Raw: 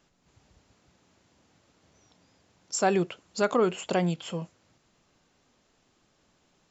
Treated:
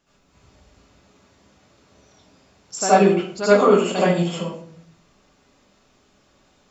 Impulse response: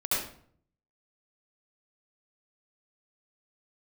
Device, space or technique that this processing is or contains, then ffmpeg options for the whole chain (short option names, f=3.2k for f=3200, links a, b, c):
bathroom: -filter_complex "[1:a]atrim=start_sample=2205[a];[0:a][a]afir=irnorm=-1:irlink=0"